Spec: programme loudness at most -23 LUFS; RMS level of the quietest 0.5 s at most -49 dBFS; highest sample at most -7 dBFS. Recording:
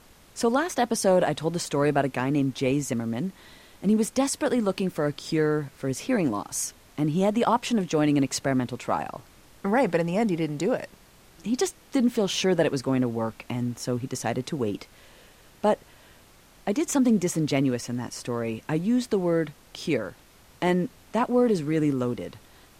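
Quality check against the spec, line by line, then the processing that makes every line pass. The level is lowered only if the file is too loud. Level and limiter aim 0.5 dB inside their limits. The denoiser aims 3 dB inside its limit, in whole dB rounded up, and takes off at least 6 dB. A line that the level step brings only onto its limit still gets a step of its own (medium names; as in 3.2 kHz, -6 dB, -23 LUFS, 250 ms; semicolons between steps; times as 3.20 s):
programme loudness -26.0 LUFS: pass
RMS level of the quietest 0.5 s -54 dBFS: pass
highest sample -9.0 dBFS: pass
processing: none needed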